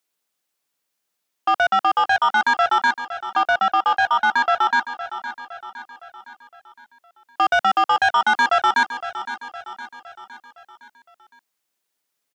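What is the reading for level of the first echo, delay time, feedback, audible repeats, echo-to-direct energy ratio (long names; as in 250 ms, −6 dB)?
−12.5 dB, 512 ms, 52%, 4, −11.0 dB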